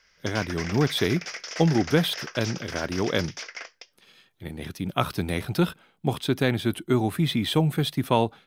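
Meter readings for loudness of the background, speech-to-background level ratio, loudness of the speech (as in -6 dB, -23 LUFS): -36.0 LUFS, 10.0 dB, -26.0 LUFS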